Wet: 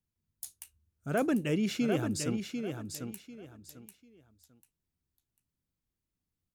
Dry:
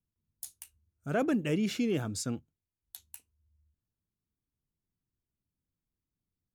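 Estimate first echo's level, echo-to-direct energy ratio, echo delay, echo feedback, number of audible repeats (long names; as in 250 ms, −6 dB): −6.5 dB, −6.0 dB, 745 ms, 25%, 3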